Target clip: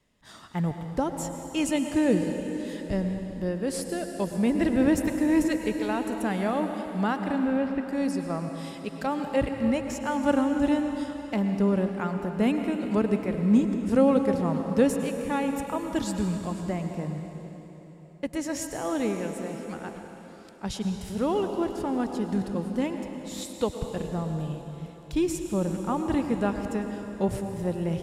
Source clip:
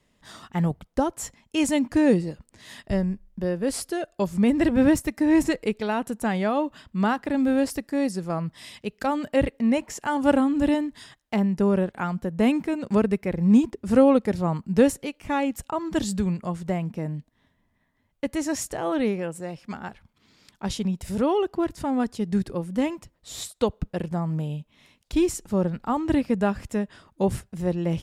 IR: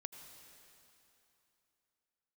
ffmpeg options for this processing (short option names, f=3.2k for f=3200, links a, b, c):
-filter_complex "[0:a]asettb=1/sr,asplit=3[a][b][c];[a]atrim=end=7.384[d];[b]atrim=start=7.38:end=7.83,asetpts=PTS-STARTPTS,afade=t=in:d=0.004:c=qsin,afade=t=out:st=0.446:d=0.004:c=qsin,lowpass=f=2.8k:w=0.5412,lowpass=f=2.8k:w=1.3066[e];[c]atrim=start=7.826[f];[d][e]acrossfade=d=0.004:c1=hsin:c2=qsin[g];[g][f]acrossfade=d=0.004:c1=qsin:c2=hsin[h];[1:a]atrim=start_sample=2205,asetrate=34839,aresample=44100[i];[h][i]afir=irnorm=-1:irlink=0"